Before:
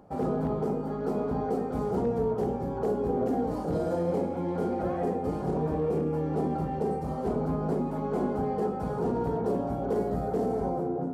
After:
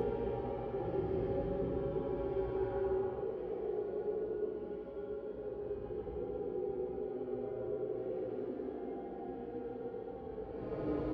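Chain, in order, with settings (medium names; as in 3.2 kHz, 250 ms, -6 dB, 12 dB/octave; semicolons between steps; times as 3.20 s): resonant low shelf 290 Hz -6.5 dB, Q 3; on a send: feedback echo behind a high-pass 118 ms, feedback 79%, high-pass 1.9 kHz, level -3.5 dB; on the sum: square tremolo 0.57 Hz, depth 65%, duty 60%; low-pass 3.1 kHz 24 dB/octave; peaking EQ 820 Hz -11.5 dB 2.1 oct; Paulstretch 11×, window 0.10 s, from 2.53 s; doubling 16 ms -11 dB; trim +1 dB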